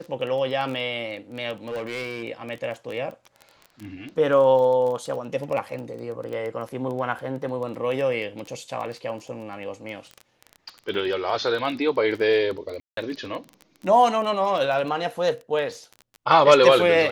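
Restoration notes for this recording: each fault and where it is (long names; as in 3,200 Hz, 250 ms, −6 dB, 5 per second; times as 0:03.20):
surface crackle 16 per second −30 dBFS
0:01.67–0:02.24: clipping −26.5 dBFS
0:12.80–0:12.97: drop-out 173 ms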